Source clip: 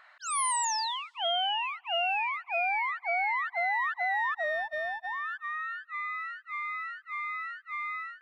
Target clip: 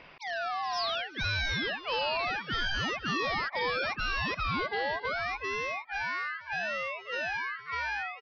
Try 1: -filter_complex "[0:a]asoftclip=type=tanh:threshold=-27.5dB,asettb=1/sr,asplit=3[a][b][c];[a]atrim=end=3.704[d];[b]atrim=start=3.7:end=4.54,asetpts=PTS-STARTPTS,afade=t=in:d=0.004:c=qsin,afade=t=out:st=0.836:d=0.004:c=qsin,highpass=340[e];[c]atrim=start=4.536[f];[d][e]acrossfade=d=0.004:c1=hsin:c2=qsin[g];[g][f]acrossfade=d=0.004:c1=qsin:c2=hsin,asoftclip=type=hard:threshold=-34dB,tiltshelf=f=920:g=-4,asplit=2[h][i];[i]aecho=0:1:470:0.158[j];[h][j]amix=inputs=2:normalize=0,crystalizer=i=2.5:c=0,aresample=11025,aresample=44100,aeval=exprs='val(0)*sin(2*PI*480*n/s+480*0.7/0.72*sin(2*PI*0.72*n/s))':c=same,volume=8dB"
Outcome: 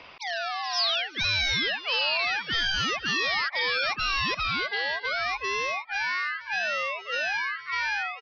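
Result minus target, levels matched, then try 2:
1000 Hz band -3.5 dB
-filter_complex "[0:a]asoftclip=type=tanh:threshold=-27.5dB,asettb=1/sr,asplit=3[a][b][c];[a]atrim=end=3.704[d];[b]atrim=start=3.7:end=4.54,asetpts=PTS-STARTPTS,afade=t=in:d=0.004:c=qsin,afade=t=out:st=0.836:d=0.004:c=qsin,highpass=340[e];[c]atrim=start=4.536[f];[d][e]acrossfade=d=0.004:c1=hsin:c2=qsin[g];[g][f]acrossfade=d=0.004:c1=qsin:c2=hsin,asoftclip=type=hard:threshold=-34dB,tiltshelf=f=920:g=6,asplit=2[h][i];[i]aecho=0:1:470:0.158[j];[h][j]amix=inputs=2:normalize=0,crystalizer=i=2.5:c=0,aresample=11025,aresample=44100,aeval=exprs='val(0)*sin(2*PI*480*n/s+480*0.7/0.72*sin(2*PI*0.72*n/s))':c=same,volume=8dB"

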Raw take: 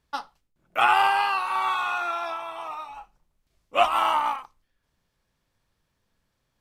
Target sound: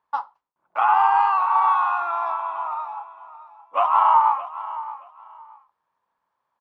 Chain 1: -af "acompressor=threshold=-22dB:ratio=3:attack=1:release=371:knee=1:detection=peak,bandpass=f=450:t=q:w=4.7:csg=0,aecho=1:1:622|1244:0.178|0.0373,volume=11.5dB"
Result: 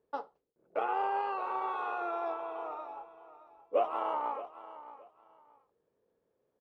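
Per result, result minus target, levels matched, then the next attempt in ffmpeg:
500 Hz band +14.0 dB; compressor: peak gain reduction +4.5 dB
-af "acompressor=threshold=-22dB:ratio=3:attack=1:release=371:knee=1:detection=peak,bandpass=f=980:t=q:w=4.7:csg=0,aecho=1:1:622|1244:0.178|0.0373,volume=11.5dB"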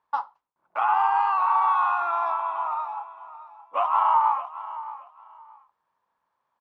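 compressor: peak gain reduction +4.5 dB
-af "acompressor=threshold=-15.5dB:ratio=3:attack=1:release=371:knee=1:detection=peak,bandpass=f=980:t=q:w=4.7:csg=0,aecho=1:1:622|1244:0.178|0.0373,volume=11.5dB"

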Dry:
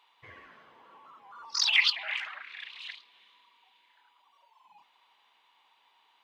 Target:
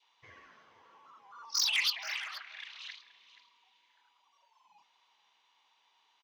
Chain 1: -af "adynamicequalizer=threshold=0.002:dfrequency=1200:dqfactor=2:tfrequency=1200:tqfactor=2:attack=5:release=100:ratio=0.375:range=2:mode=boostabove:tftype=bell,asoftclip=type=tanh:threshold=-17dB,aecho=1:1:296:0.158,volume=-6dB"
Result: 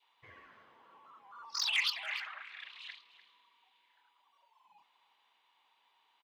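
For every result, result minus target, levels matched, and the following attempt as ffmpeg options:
echo 0.181 s early; 8000 Hz band -5.0 dB
-af "adynamicequalizer=threshold=0.002:dfrequency=1200:dqfactor=2:tfrequency=1200:tqfactor=2:attack=5:release=100:ratio=0.375:range=2:mode=boostabove:tftype=bell,asoftclip=type=tanh:threshold=-17dB,aecho=1:1:477:0.158,volume=-6dB"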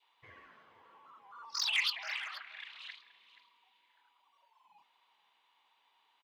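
8000 Hz band -5.0 dB
-af "adynamicequalizer=threshold=0.002:dfrequency=1200:dqfactor=2:tfrequency=1200:tqfactor=2:attack=5:release=100:ratio=0.375:range=2:mode=boostabove:tftype=bell,lowpass=f=6k:t=q:w=4.4,asoftclip=type=tanh:threshold=-17dB,aecho=1:1:477:0.158,volume=-6dB"

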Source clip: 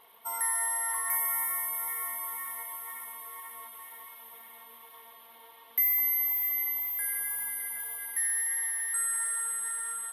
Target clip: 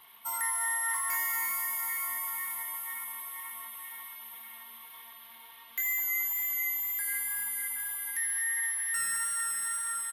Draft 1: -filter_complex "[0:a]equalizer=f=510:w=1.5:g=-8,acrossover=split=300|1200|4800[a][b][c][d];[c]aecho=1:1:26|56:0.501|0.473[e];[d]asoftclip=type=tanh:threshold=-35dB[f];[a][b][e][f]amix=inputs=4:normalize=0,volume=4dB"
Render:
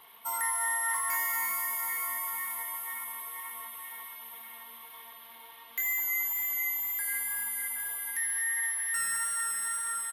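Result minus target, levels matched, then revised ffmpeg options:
500 Hz band +5.5 dB
-filter_complex "[0:a]equalizer=f=510:w=1.5:g=-18.5,acrossover=split=300|1200|4800[a][b][c][d];[c]aecho=1:1:26|56:0.501|0.473[e];[d]asoftclip=type=tanh:threshold=-35dB[f];[a][b][e][f]amix=inputs=4:normalize=0,volume=4dB"

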